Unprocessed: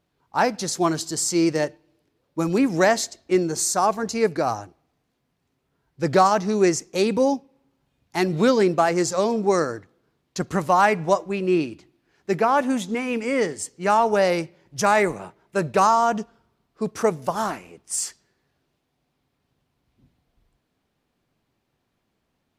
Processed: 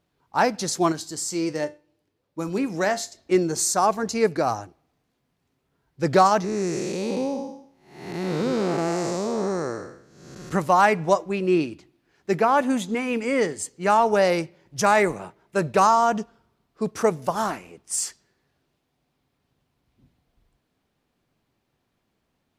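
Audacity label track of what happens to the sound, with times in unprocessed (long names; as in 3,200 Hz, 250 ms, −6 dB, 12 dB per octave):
0.920000	3.170000	tuned comb filter 99 Hz, decay 0.27 s
6.440000	10.520000	spectrum smeared in time width 348 ms
12.430000	13.990000	notch filter 5,500 Hz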